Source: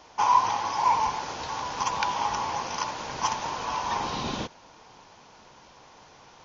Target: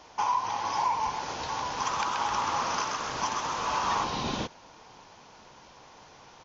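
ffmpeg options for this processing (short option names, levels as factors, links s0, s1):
-filter_complex "[0:a]alimiter=limit=0.119:level=0:latency=1:release=412,asplit=3[s0][s1][s2];[s0]afade=t=out:st=1.81:d=0.02[s3];[s1]asplit=9[s4][s5][s6][s7][s8][s9][s10][s11][s12];[s5]adelay=130,afreqshift=130,volume=0.668[s13];[s6]adelay=260,afreqshift=260,volume=0.376[s14];[s7]adelay=390,afreqshift=390,volume=0.209[s15];[s8]adelay=520,afreqshift=520,volume=0.117[s16];[s9]adelay=650,afreqshift=650,volume=0.0661[s17];[s10]adelay=780,afreqshift=780,volume=0.0367[s18];[s11]adelay=910,afreqshift=910,volume=0.0207[s19];[s12]adelay=1040,afreqshift=1040,volume=0.0115[s20];[s4][s13][s14][s15][s16][s17][s18][s19][s20]amix=inputs=9:normalize=0,afade=t=in:st=1.81:d=0.02,afade=t=out:st=4.03:d=0.02[s21];[s2]afade=t=in:st=4.03:d=0.02[s22];[s3][s21][s22]amix=inputs=3:normalize=0"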